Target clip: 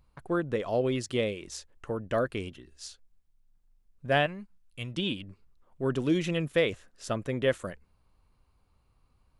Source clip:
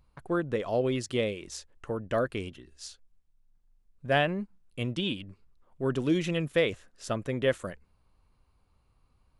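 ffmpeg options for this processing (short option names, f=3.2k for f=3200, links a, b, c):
-filter_complex "[0:a]asettb=1/sr,asplit=3[a][b][c];[a]atrim=end=4.264[d];[b]atrim=start=4.26:end=4.94,asetpts=PTS-STARTPTS,afade=t=in:d=0.004:c=qsin,afade=t=out:st=0.676:d=0.004:c=qsin,equalizer=f=360:t=o:w=2.7:g=-11.5[e];[c]atrim=start=4.936[f];[d][e]acrossfade=d=0.004:c1=hsin:c2=qsin[g];[g][f]acrossfade=d=0.004:c1=qsin:c2=hsin"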